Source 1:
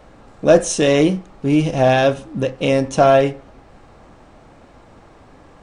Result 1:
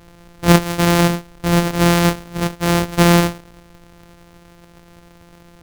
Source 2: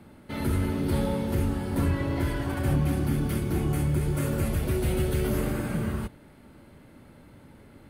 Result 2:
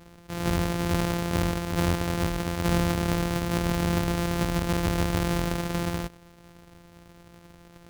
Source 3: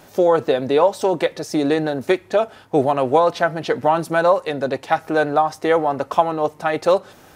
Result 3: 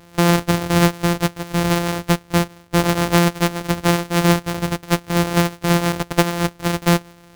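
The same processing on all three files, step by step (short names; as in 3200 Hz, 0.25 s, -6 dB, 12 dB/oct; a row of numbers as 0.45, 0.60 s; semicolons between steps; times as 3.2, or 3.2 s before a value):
sample sorter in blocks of 256 samples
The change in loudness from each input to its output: 0.0, +0.5, 0.0 LU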